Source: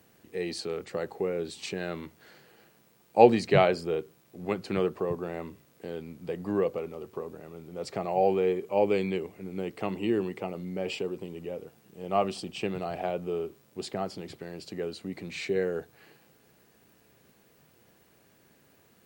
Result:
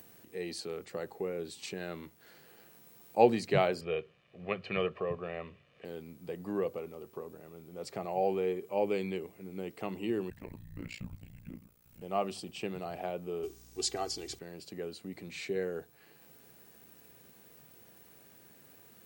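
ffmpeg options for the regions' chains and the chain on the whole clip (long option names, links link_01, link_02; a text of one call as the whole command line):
ffmpeg -i in.wav -filter_complex "[0:a]asettb=1/sr,asplit=3[link_01][link_02][link_03];[link_01]atrim=end=3.814[link_04];[link_02]atrim=start=3.81:end=5.85,asetpts=PTS-STARTPTS,afade=type=in:duration=0.004:curve=qsin,afade=type=out:start_time=2.036:duration=0.004:curve=qsin,lowpass=frequency=2700:width_type=q:width=3.1,aecho=1:1:1.7:0.6,atrim=end_sample=89964[link_05];[link_03]atrim=start=5.846[link_06];[link_04][link_05]acrossfade=duration=0.004:curve1=hsin:curve2=qsin[link_07];[link_07][link_06]acrossfade=duration=0.004:curve1=qsin:curve2=hsin,asettb=1/sr,asplit=3[link_08][link_09][link_10];[link_08]atrim=end=10.304[link_11];[link_09]atrim=start=10.3:end=12.02,asetpts=PTS-STARTPTS,afade=type=in:duration=0.004:curve=qsin,afade=type=out:start_time=1.716:duration=0.004:curve=qsin,afreqshift=-280,tremolo=f=59:d=0.974[link_12];[link_10]atrim=start=12.016[link_13];[link_11][link_12]acrossfade=duration=0.004:curve1=hsin:curve2=qsin[link_14];[link_14][link_13]acrossfade=duration=0.004:curve1=qsin:curve2=hsin,asettb=1/sr,asplit=3[link_15][link_16][link_17];[link_15]atrim=end=13.434[link_18];[link_16]atrim=start=13.43:end=14.39,asetpts=PTS-STARTPTS,afade=type=in:duration=0.004:curve=qsin,afade=type=out:start_time=0.956:duration=0.004:curve=qsin,equalizer=frequency=6200:width_type=o:width=1.3:gain=14.5,aecho=1:1:2.6:0.77,atrim=end_sample=42336,aeval=exprs='val(0)+0.00251*(sin(2*PI*60*n/s)+sin(2*PI*2*60*n/s)/2+sin(2*PI*3*60*n/s)/3+sin(2*PI*4*60*n/s)/4+sin(2*PI*5*60*n/s)/5)':channel_layout=same[link_19];[link_17]atrim=start=14.386[link_20];[link_18][link_19]acrossfade=duration=0.004:curve1=hsin:curve2=qsin[link_21];[link_21][link_20]acrossfade=duration=0.004:curve1=qsin:curve2=hsin,acompressor=mode=upward:threshold=-46dB:ratio=2.5,highshelf=frequency=10000:gain=10,bandreject=frequency=50:width_type=h:width=6,bandreject=frequency=100:width_type=h:width=6,volume=-6dB" out.wav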